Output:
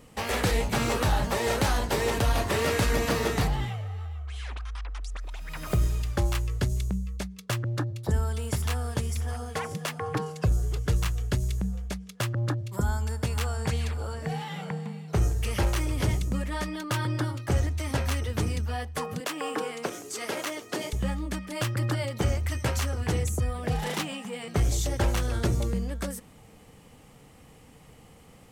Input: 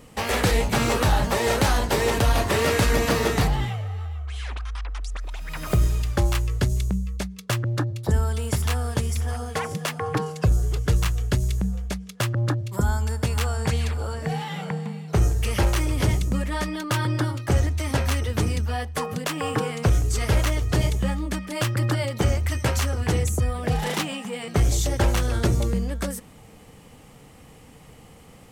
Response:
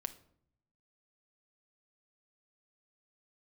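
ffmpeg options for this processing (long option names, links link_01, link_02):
-filter_complex "[0:a]asettb=1/sr,asplit=3[link_01][link_02][link_03];[link_01]atrim=end=19.204[link_04];[link_02]atrim=start=19.2:end=20.93,asetpts=PTS-STARTPTS,afade=type=in:duration=0.004:curve=qsin,afade=type=out:start_time=1.726:duration=0.004:curve=qsin,highpass=frequency=240:width=0.5412,highpass=frequency=240:width=1.3066[link_05];[link_03]atrim=start=20.926[link_06];[link_04][link_05]acrossfade=duration=0.004:curve1=hsin:curve2=qsin[link_07];[link_07][link_06]acrossfade=duration=0.004:curve1=qsin:curve2=hsin,volume=-4.5dB"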